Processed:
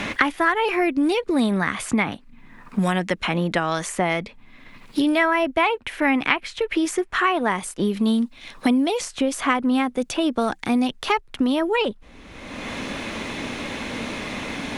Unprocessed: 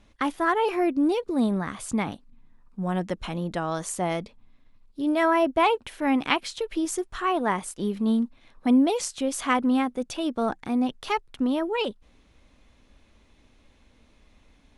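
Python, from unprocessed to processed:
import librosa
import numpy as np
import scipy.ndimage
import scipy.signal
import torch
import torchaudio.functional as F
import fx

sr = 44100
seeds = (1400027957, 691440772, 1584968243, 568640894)

y = fx.peak_eq(x, sr, hz=2100.0, db=fx.steps((0.0, 9.5), (7.43, 3.5)), octaves=1.2)
y = fx.band_squash(y, sr, depth_pct=100)
y = y * 10.0 ** (2.5 / 20.0)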